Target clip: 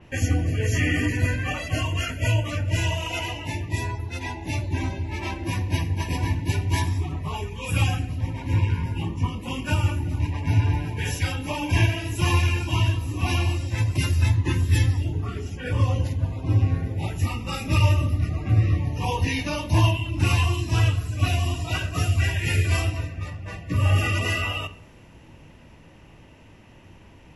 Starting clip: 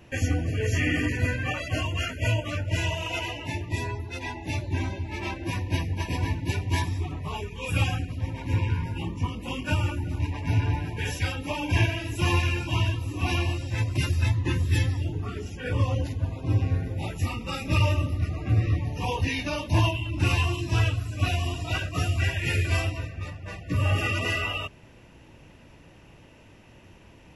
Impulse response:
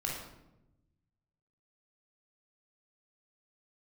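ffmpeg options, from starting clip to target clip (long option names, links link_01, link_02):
-filter_complex "[0:a]asplit=2[link_01][link_02];[1:a]atrim=start_sample=2205,asetrate=66150,aresample=44100,lowpass=3600[link_03];[link_02][link_03]afir=irnorm=-1:irlink=0,volume=-8.5dB[link_04];[link_01][link_04]amix=inputs=2:normalize=0,adynamicequalizer=threshold=0.00631:dfrequency=5000:dqfactor=0.7:tfrequency=5000:tqfactor=0.7:attack=5:release=100:ratio=0.375:range=3:mode=boostabove:tftype=highshelf"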